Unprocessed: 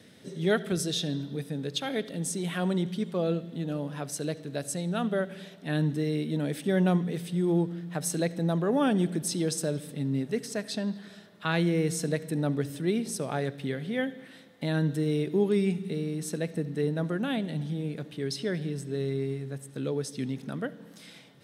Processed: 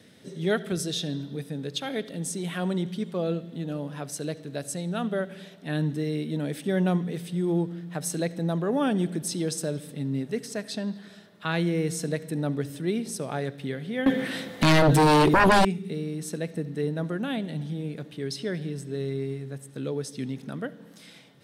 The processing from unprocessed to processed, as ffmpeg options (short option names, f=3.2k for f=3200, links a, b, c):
-filter_complex "[0:a]asettb=1/sr,asplit=3[a][b][c];[a]atrim=end=14.064[d];[b]atrim=start=14.06:end=15.65,asetpts=PTS-STARTPTS,afade=t=in:d=0.004:c=qsin,afade=t=out:st=1.586:d=0.004:c=qsin,aeval=exprs='0.2*sin(PI/2*5.01*val(0)/0.2)':c=same[e];[c]atrim=start=15.646[f];[d][e]acrossfade=d=0.004:c1=hsin:c2=qsin[g];[g][f]acrossfade=d=0.004:c1=qsin:c2=hsin"